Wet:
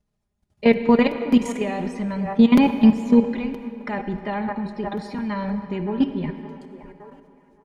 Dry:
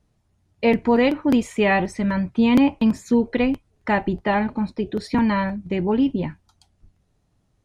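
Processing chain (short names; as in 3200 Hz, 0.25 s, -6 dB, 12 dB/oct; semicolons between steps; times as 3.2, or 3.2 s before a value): band-limited delay 0.567 s, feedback 40%, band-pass 860 Hz, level -12 dB; level quantiser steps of 16 dB; comb 4.9 ms, depth 52%; reverb RT60 2.9 s, pre-delay 51 ms, DRR 9.5 dB; gain +3 dB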